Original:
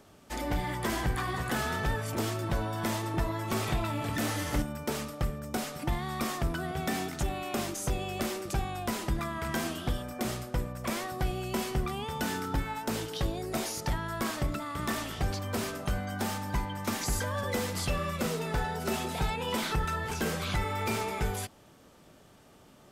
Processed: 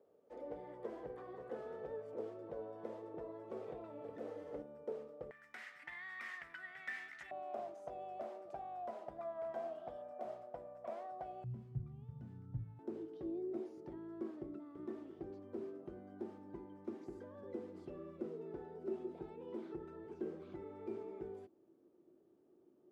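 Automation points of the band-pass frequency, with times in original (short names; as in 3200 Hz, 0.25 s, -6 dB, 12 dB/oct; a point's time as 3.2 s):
band-pass, Q 7.4
480 Hz
from 5.31 s 1900 Hz
from 7.31 s 650 Hz
from 11.44 s 120 Hz
from 12.79 s 350 Hz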